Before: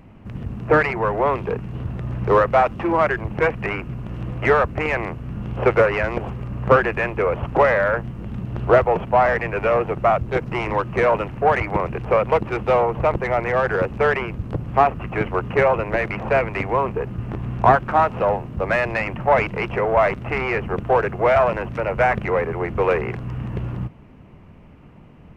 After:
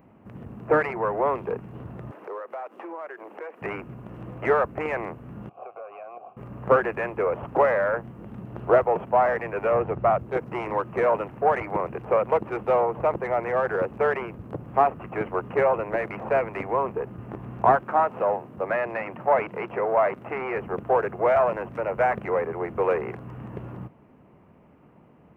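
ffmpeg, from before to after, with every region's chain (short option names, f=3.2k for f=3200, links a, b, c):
-filter_complex "[0:a]asettb=1/sr,asplit=3[a][b][c];[a]atrim=end=2.114[d];[b]atrim=start=2.11:end=3.62,asetpts=PTS-STARTPTS,afade=t=in:d=0.004:c=qsin,afade=t=out:st=1.506:d=0.004:c=qsin,highpass=f=330:w=0.5412,highpass=f=330:w=1.3066,acompressor=threshold=-31dB:ratio=4:attack=3.2:release=140:knee=1:detection=peak[e];[c]atrim=start=3.616[f];[d][e]acrossfade=d=0.004:c1=hsin:c2=qsin[g];[g][f]acrossfade=d=0.004:c1=qsin:c2=hsin,asettb=1/sr,asplit=3[h][i][j];[h]atrim=end=5.494[k];[i]atrim=start=5.49:end=6.37,asetpts=PTS-STARTPTS,afade=t=in:d=0.004:c=qsin,afade=t=out:st=0.876:d=0.004:c=qsin,bandreject=f=1.7k:w=23,acompressor=threshold=-20dB:ratio=6:attack=3.2:release=140:knee=1:detection=peak,asplit=3[l][m][n];[l]bandpass=f=730:t=q:w=8,volume=0dB[o];[m]bandpass=f=1.09k:t=q:w=8,volume=-6dB[p];[n]bandpass=f=2.44k:t=q:w=8,volume=-9dB[q];[o][p][q]amix=inputs=3:normalize=0[r];[j]atrim=start=6.366[s];[k][r]acrossfade=d=0.004:c1=hsin:c2=qsin[t];[t][s]acrossfade=d=0.004:c1=qsin:c2=hsin,asettb=1/sr,asplit=3[u][v][w];[u]atrim=end=9.714[x];[v]atrim=start=9.71:end=10.19,asetpts=PTS-STARTPTS,afade=t=in:d=0.004:c=qsin,afade=t=out:st=0.476:d=0.004:c=qsin,lowpass=4.8k,equalizer=f=83:w=0.99:g=12.5[y];[w]atrim=start=10.186[z];[x][y]acrossfade=d=0.004:c1=hsin:c2=qsin[aa];[aa][z]acrossfade=d=0.004:c1=qsin:c2=hsin,asettb=1/sr,asplit=3[ab][ac][ad];[ab]atrim=end=17.814[ae];[ac]atrim=start=17.81:end=20.56,asetpts=PTS-STARTPTS,afade=t=in:d=0.004:c=qsin,afade=t=out:st=2.746:d=0.004:c=qsin,acrossover=split=3500[af][ag];[ag]acompressor=threshold=-50dB:ratio=4:attack=1:release=60[ah];[af][ah]amix=inputs=2:normalize=0,highpass=f=160:p=1[ai];[ad]atrim=start=20.556[aj];[ae][ai]acrossfade=d=0.004:c1=hsin:c2=qsin[ak];[ak][aj]acrossfade=d=0.004:c1=qsin:c2=hsin,highpass=f=440:p=1,equalizer=f=4.4k:w=0.46:g=-15"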